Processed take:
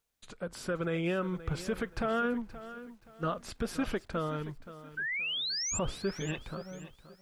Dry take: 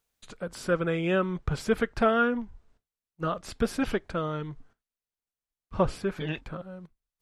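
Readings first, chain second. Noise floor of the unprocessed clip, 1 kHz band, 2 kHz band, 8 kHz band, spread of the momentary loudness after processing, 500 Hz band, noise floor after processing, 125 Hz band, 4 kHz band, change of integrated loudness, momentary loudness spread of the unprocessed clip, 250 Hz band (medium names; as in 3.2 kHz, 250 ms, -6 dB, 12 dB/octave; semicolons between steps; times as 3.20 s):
under -85 dBFS, -6.5 dB, -2.5 dB, +8.0 dB, 15 LU, -6.5 dB, -62 dBFS, -4.0 dB, +5.5 dB, -5.5 dB, 16 LU, -5.0 dB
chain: peak limiter -20 dBFS, peak gain reduction 8.5 dB; painted sound rise, 4.97–5.79 s, 1.5–7.6 kHz -31 dBFS; bit-crushed delay 525 ms, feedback 35%, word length 9-bit, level -14.5 dB; trim -3 dB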